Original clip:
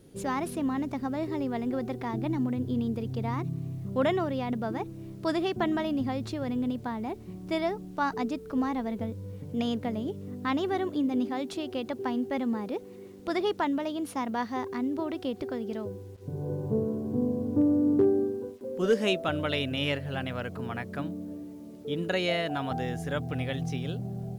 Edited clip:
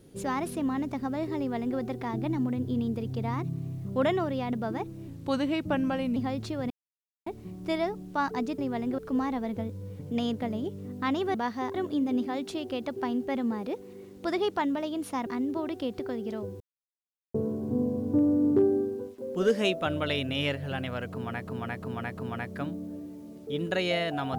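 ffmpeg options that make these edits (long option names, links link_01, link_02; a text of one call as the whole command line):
ffmpeg -i in.wav -filter_complex "[0:a]asplit=15[link_01][link_02][link_03][link_04][link_05][link_06][link_07][link_08][link_09][link_10][link_11][link_12][link_13][link_14][link_15];[link_01]atrim=end=5.084[link_16];[link_02]atrim=start=5.08:end=5.99,asetpts=PTS-STARTPTS,asetrate=37044,aresample=44100[link_17];[link_03]atrim=start=5.986:end=6.53,asetpts=PTS-STARTPTS,afade=type=out:start_time=0.54:duration=0.004:curve=hsin[link_18];[link_04]atrim=start=6.53:end=7.09,asetpts=PTS-STARTPTS,volume=0[link_19];[link_05]atrim=start=7.09:end=8.412,asetpts=PTS-STARTPTS,afade=type=in:duration=0.004:curve=hsin[link_20];[link_06]atrim=start=1.378:end=1.782[link_21];[link_07]atrim=start=8.408:end=10.772[link_22];[link_08]atrim=start=14.288:end=14.692[link_23];[link_09]atrim=start=10.768:end=14.292[link_24];[link_10]atrim=start=14.688:end=16.03,asetpts=PTS-STARTPTS,afade=type=out:start_time=1.338:duration=0.004:curve=hsin[link_25];[link_11]atrim=start=16.03:end=16.77,asetpts=PTS-STARTPTS,volume=0[link_26];[link_12]atrim=start=16.77:end=20.892,asetpts=PTS-STARTPTS,afade=type=in:duration=0.004:curve=hsin[link_27];[link_13]atrim=start=20.538:end=20.892[link_28];[link_14]atrim=start=20.538:end=20.892[link_29];[link_15]atrim=start=20.538[link_30];[link_16][link_17]acrossfade=duration=0.004:curve1=hsin:curve2=hsin[link_31];[link_18][link_19][link_20]concat=n=3:v=0:a=1[link_32];[link_31][link_32]acrossfade=duration=0.004:curve1=hsin:curve2=hsin[link_33];[link_33][link_21]acrossfade=duration=0.004:curve1=hsin:curve2=hsin[link_34];[link_34][link_22]acrossfade=duration=0.004:curve1=hsin:curve2=hsin[link_35];[link_35][link_23]acrossfade=duration=0.004:curve1=hsin:curve2=hsin[link_36];[link_36][link_24]acrossfade=duration=0.004:curve1=hsin:curve2=hsin[link_37];[link_25][link_26][link_27]concat=n=3:v=0:a=1[link_38];[link_37][link_38]acrossfade=duration=0.004:curve1=hsin:curve2=hsin[link_39];[link_39][link_28]acrossfade=duration=0.004:curve1=hsin:curve2=hsin[link_40];[link_40][link_29]acrossfade=duration=0.004:curve1=hsin:curve2=hsin[link_41];[link_41][link_30]acrossfade=duration=0.004:curve1=hsin:curve2=hsin" out.wav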